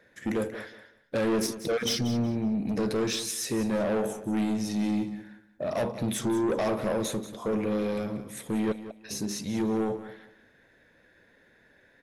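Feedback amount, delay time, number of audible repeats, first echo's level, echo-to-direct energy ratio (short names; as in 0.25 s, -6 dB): 23%, 0.185 s, 2, -13.5 dB, -13.5 dB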